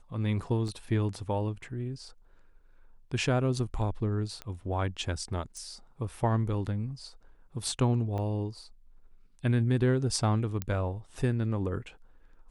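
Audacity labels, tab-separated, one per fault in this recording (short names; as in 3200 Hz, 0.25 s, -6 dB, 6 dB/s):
0.680000	0.680000	gap 2.5 ms
4.420000	4.420000	pop -23 dBFS
5.570000	5.570000	pop -31 dBFS
8.180000	8.180000	gap 2.1 ms
10.620000	10.620000	pop -17 dBFS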